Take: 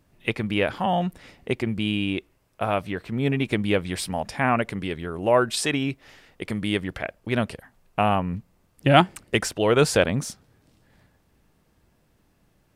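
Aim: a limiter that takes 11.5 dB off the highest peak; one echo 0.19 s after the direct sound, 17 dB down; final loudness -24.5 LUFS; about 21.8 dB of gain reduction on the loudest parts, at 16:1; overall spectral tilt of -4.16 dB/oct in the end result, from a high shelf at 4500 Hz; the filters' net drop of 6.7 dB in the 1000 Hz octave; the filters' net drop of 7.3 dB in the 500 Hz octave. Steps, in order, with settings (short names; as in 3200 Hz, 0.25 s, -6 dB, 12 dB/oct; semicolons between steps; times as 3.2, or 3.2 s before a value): bell 500 Hz -7.5 dB; bell 1000 Hz -7 dB; high shelf 4500 Hz +8 dB; compressor 16:1, threshold -37 dBFS; limiter -31 dBFS; echo 0.19 s -17 dB; gain +19.5 dB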